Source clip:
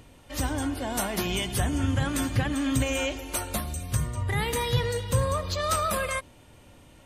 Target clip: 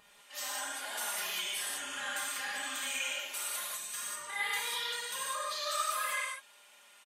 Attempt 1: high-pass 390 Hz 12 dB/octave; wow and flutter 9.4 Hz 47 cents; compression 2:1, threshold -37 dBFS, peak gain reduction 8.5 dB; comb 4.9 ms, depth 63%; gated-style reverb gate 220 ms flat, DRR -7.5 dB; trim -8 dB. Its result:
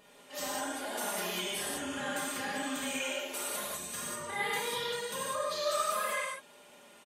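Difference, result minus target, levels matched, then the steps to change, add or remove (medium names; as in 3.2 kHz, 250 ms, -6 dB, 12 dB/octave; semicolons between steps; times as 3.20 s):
500 Hz band +10.0 dB
change: high-pass 1.2 kHz 12 dB/octave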